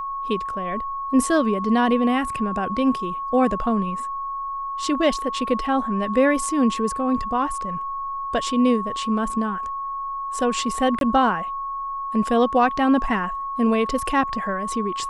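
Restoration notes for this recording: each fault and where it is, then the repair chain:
whine 1.1 kHz -26 dBFS
10.99–11.01 s: dropout 22 ms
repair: band-stop 1.1 kHz, Q 30; interpolate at 10.99 s, 22 ms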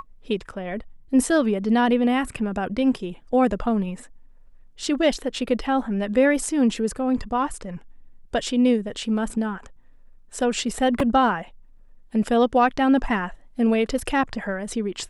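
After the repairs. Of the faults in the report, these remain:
nothing left

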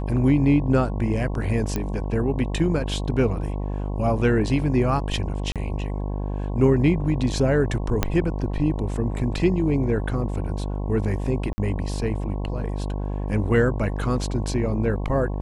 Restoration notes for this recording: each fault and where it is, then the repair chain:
buzz 50 Hz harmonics 22 -27 dBFS
1.76 s: pop -12 dBFS
5.52–5.56 s: dropout 37 ms
8.03 s: pop -5 dBFS
11.53–11.58 s: dropout 50 ms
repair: de-click; de-hum 50 Hz, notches 22; interpolate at 5.52 s, 37 ms; interpolate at 11.53 s, 50 ms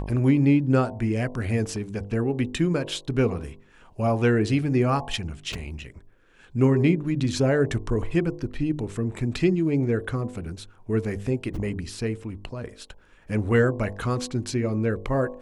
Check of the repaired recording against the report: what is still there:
8.03 s: pop

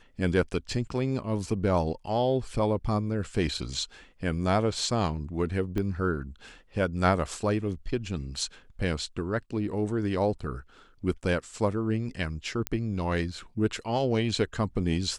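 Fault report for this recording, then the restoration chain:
5.78 s: pop -19 dBFS
12.67 s: pop -12 dBFS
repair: de-click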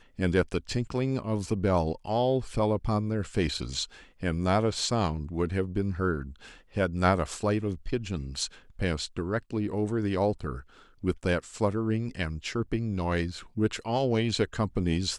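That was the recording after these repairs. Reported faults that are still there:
5.78 s: pop

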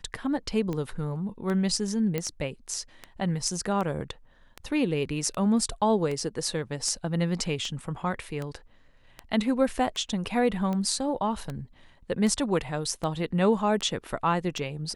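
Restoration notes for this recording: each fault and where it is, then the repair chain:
tick 78 rpm -20 dBFS
2.18 s: pop -15 dBFS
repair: de-click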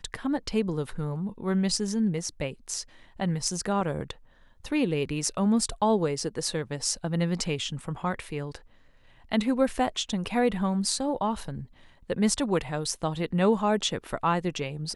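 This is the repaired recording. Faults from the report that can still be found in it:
nothing left

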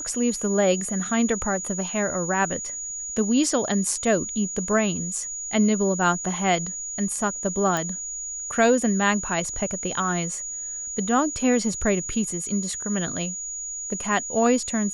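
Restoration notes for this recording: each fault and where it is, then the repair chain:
whine 6.8 kHz -30 dBFS
7.77 s: pop -11 dBFS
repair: de-click; band-stop 6.8 kHz, Q 30

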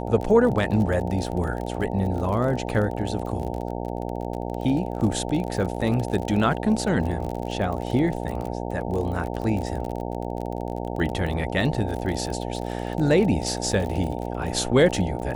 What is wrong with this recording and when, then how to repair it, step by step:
buzz 60 Hz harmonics 15 -30 dBFS
crackle 37 per s -29 dBFS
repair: de-click; de-hum 60 Hz, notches 15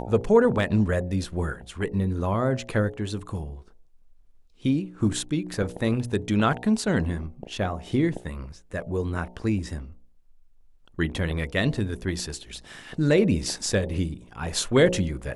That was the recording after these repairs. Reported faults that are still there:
nothing left

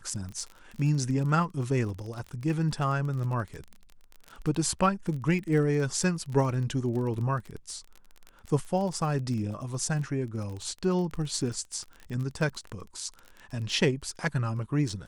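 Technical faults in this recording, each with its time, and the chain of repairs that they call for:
crackle 25 per s -34 dBFS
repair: de-click

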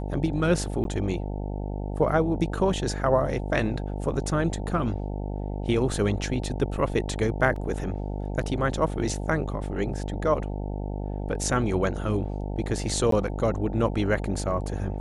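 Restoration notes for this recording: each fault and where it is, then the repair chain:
buzz 50 Hz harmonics 18 -31 dBFS
0.84–0.85 s: dropout 12 ms
7.56 s: dropout 3 ms
13.11–13.12 s: dropout 13 ms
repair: de-hum 50 Hz, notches 18; interpolate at 0.84 s, 12 ms; interpolate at 7.56 s, 3 ms; interpolate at 13.11 s, 13 ms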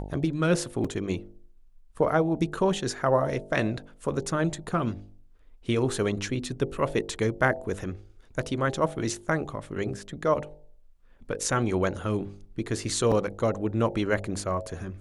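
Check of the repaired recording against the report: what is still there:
nothing left

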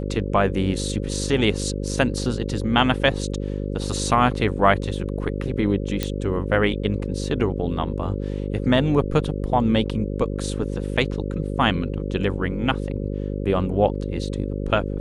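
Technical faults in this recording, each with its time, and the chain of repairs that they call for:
buzz 50 Hz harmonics 11 -27 dBFS
6.03 s: pop -9 dBFS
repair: de-click; de-hum 50 Hz, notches 11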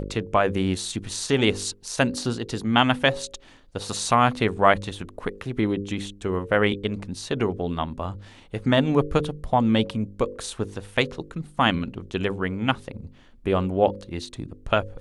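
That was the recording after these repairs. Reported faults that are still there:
nothing left

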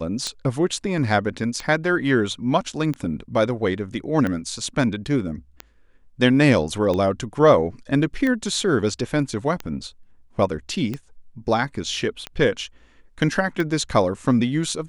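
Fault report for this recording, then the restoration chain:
tick 45 rpm -14 dBFS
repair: de-click

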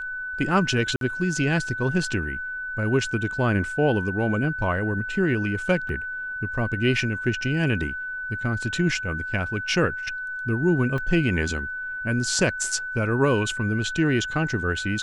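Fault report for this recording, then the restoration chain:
whine 1.5 kHz -29 dBFS
0.96–1.01 s: dropout 52 ms
5.89 s: dropout 2 ms
10.98 s: dropout 2.2 ms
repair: band-stop 1.5 kHz, Q 30; interpolate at 0.96 s, 52 ms; interpolate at 5.89 s, 2 ms; interpolate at 10.98 s, 2.2 ms

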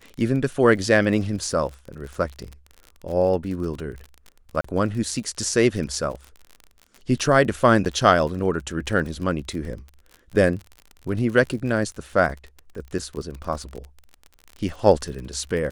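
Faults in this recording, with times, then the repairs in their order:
crackle 40 per s -31 dBFS
4.61–4.64 s: dropout 34 ms
7.85–7.86 s: dropout 8.4 ms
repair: de-click; interpolate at 4.61 s, 34 ms; interpolate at 7.85 s, 8.4 ms

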